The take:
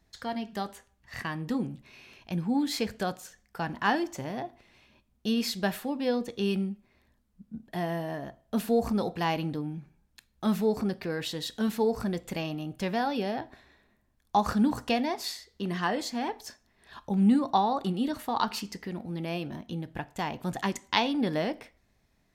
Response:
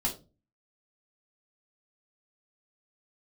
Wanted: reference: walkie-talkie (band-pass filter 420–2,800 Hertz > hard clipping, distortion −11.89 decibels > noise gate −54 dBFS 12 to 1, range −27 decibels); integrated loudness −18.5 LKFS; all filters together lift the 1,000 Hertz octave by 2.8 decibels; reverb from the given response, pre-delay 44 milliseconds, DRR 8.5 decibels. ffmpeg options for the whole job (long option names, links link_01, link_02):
-filter_complex "[0:a]equalizer=frequency=1000:width_type=o:gain=4,asplit=2[link_01][link_02];[1:a]atrim=start_sample=2205,adelay=44[link_03];[link_02][link_03]afir=irnorm=-1:irlink=0,volume=-13.5dB[link_04];[link_01][link_04]amix=inputs=2:normalize=0,highpass=420,lowpass=2800,asoftclip=type=hard:threshold=-21.5dB,agate=range=-27dB:threshold=-54dB:ratio=12,volume=14.5dB"